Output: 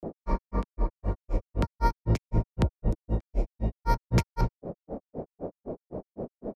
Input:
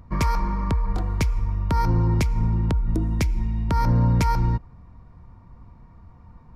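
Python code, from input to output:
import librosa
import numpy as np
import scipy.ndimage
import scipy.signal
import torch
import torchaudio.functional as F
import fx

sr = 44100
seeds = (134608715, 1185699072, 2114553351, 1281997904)

y = fx.dmg_noise_band(x, sr, seeds[0], low_hz=150.0, high_hz=630.0, level_db=-33.0)
y = fx.granulator(y, sr, seeds[1], grain_ms=133.0, per_s=3.9, spray_ms=100.0, spread_st=0)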